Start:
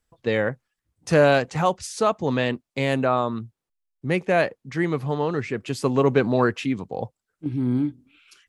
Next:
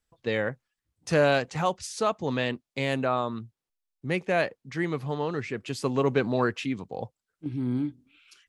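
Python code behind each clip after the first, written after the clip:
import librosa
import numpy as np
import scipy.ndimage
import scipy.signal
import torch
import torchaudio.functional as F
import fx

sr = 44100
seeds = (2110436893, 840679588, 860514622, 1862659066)

y = fx.peak_eq(x, sr, hz=4000.0, db=3.5, octaves=2.3)
y = y * librosa.db_to_amplitude(-5.5)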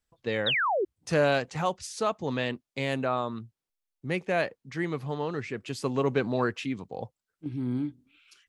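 y = fx.spec_paint(x, sr, seeds[0], shape='fall', start_s=0.46, length_s=0.39, low_hz=340.0, high_hz=4000.0, level_db=-24.0)
y = y * librosa.db_to_amplitude(-2.0)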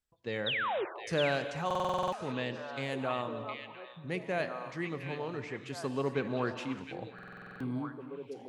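y = fx.echo_stepped(x, sr, ms=712, hz=2700.0, octaves=-1.4, feedback_pct=70, wet_db=-3)
y = fx.rev_gated(y, sr, seeds[1], gate_ms=340, shape='flat', drr_db=10.0)
y = fx.buffer_glitch(y, sr, at_s=(1.66, 7.14), block=2048, repeats=9)
y = y * librosa.db_to_amplitude(-6.5)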